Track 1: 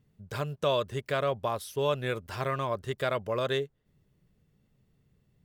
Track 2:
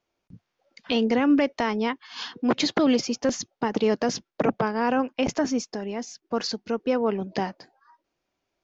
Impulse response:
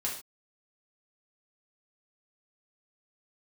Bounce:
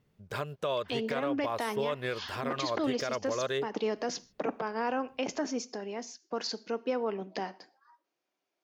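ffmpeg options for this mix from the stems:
-filter_complex "[0:a]bass=f=250:g=-7,treble=f=4000:g=-5,volume=1.26[s0];[1:a]highpass=260,volume=0.501,asplit=2[s1][s2];[s2]volume=0.141[s3];[2:a]atrim=start_sample=2205[s4];[s3][s4]afir=irnorm=-1:irlink=0[s5];[s0][s1][s5]amix=inputs=3:normalize=0,alimiter=limit=0.0841:level=0:latency=1:release=180"

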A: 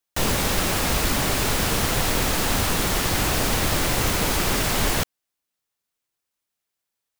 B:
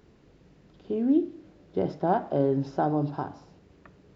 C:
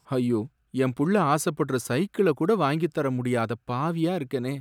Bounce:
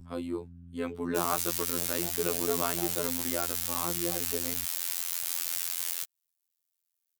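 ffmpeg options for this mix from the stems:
-filter_complex "[0:a]aderivative,alimiter=limit=0.0944:level=0:latency=1:release=169,adelay=1000,volume=1.12[s0];[1:a]volume=0.299[s1];[2:a]highpass=290,aeval=exprs='val(0)+0.0158*(sin(2*PI*60*n/s)+sin(2*PI*2*60*n/s)/2+sin(2*PI*3*60*n/s)/3+sin(2*PI*4*60*n/s)/4+sin(2*PI*5*60*n/s)/5)':c=same,volume=0.596,asplit=2[s2][s3];[s3]apad=whole_len=183208[s4];[s1][s4]sidechaingate=range=0.0224:threshold=0.0178:ratio=16:detection=peak[s5];[s0][s5][s2]amix=inputs=3:normalize=0,afftfilt=real='hypot(re,im)*cos(PI*b)':imag='0':win_size=2048:overlap=0.75,acrossover=split=130[s6][s7];[s6]acompressor=threshold=0.0224:ratio=6[s8];[s8][s7]amix=inputs=2:normalize=0"

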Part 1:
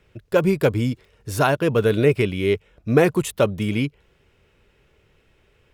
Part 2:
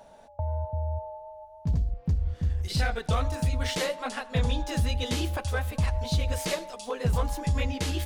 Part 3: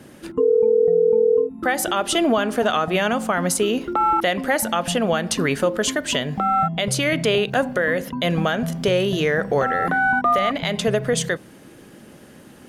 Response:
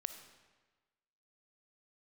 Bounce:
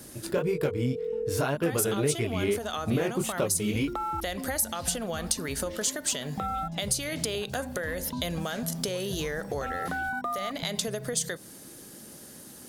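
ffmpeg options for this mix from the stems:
-filter_complex "[0:a]alimiter=limit=0.282:level=0:latency=1:release=309,flanger=delay=17.5:depth=7.1:speed=1.8,volume=1.26[s0];[1:a]adelay=2050,volume=0.158[s1];[2:a]acompressor=threshold=0.0708:ratio=6,aexciter=amount=3.1:drive=7.8:freq=3900,volume=0.531[s2];[s0][s1][s2]amix=inputs=3:normalize=0,acompressor=threshold=0.0501:ratio=2.5"

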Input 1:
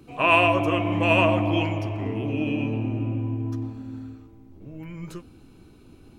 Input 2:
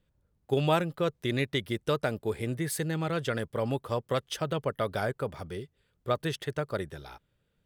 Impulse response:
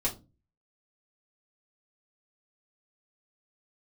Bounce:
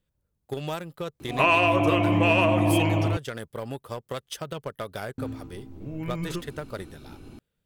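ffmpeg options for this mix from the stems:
-filter_complex "[0:a]acontrast=34,highshelf=f=6400:g=-8.5,adelay=1200,volume=0.944,asplit=3[s0][s1][s2];[s0]atrim=end=3.17,asetpts=PTS-STARTPTS,afade=t=out:st=3.166:d=0.004:c=hsin[s3];[s1]atrim=start=3.17:end=5.18,asetpts=PTS-STARTPTS,volume=0[s4];[s2]atrim=start=5.18,asetpts=PTS-STARTPTS,afade=t=in:d=0.004:c=hsin[s5];[s3][s4][s5]concat=n=3:v=0:a=1[s6];[1:a]acompressor=threshold=0.0355:ratio=2.5,aeval=exprs='0.0841*(cos(1*acos(clip(val(0)/0.0841,-1,1)))-cos(1*PI/2))+0.0075*(cos(3*acos(clip(val(0)/0.0841,-1,1)))-cos(3*PI/2))+0.00168*(cos(7*acos(clip(val(0)/0.0841,-1,1)))-cos(7*PI/2))':c=same,volume=0.944[s7];[s6][s7]amix=inputs=2:normalize=0,highshelf=f=6100:g=8,acompressor=threshold=0.141:ratio=6"

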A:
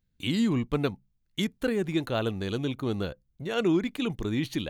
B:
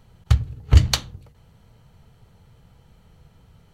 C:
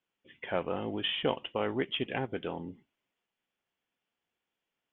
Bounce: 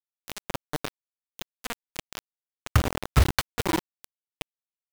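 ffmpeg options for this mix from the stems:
-filter_complex "[0:a]highshelf=f=5000:g=-7,flanger=delay=19.5:depth=2.7:speed=2.5,volume=0.376[s0];[1:a]equalizer=f=1500:w=1:g=9,acompressor=threshold=0.0708:ratio=6,highshelf=f=3000:g=-8.5,adelay=2450,volume=0.891[s1];[2:a]acompressor=threshold=0.00316:ratio=2,volume=0.141[s2];[s0][s1][s2]amix=inputs=3:normalize=0,acontrast=78,acrusher=bits=3:mix=0:aa=0.000001"

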